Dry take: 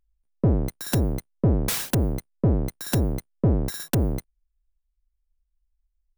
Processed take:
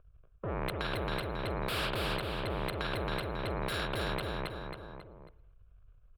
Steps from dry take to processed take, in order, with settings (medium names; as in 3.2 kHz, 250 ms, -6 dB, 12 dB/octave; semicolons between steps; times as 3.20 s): level-controlled noise filter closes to 1.9 kHz, open at -19 dBFS; bass shelf 210 Hz -6.5 dB; transient shaper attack -11 dB, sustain +9 dB; reverse; compression 16:1, threshold -28 dBFS, peak gain reduction 9.5 dB; reverse; static phaser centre 1.3 kHz, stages 8; Chebyshev shaper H 5 -8 dB, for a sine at -22.5 dBFS; distance through air 480 m; feedback delay 272 ms, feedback 33%, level -4 dB; on a send at -15.5 dB: reverberation RT60 0.80 s, pre-delay 46 ms; on the sum: spectrum-flattening compressor 2:1